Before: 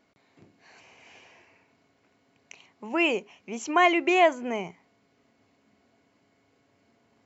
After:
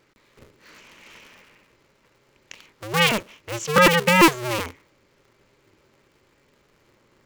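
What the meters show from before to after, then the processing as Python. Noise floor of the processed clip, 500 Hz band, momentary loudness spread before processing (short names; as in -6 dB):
-63 dBFS, +3.5 dB, 16 LU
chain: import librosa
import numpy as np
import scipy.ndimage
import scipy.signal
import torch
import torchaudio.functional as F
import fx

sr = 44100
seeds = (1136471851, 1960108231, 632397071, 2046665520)

y = fx.cycle_switch(x, sr, every=2, mode='inverted')
y = fx.peak_eq(y, sr, hz=740.0, db=-10.5, octaves=0.32)
y = y * 10.0 ** (6.0 / 20.0)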